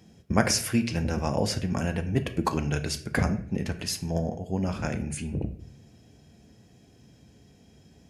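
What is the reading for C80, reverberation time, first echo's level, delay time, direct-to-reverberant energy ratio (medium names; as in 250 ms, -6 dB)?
16.0 dB, 0.55 s, no echo, no echo, 7.0 dB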